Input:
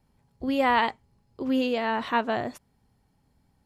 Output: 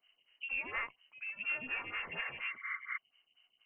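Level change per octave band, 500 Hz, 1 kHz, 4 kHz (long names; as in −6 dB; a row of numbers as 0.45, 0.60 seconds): −26.0, −21.0, −11.5 decibels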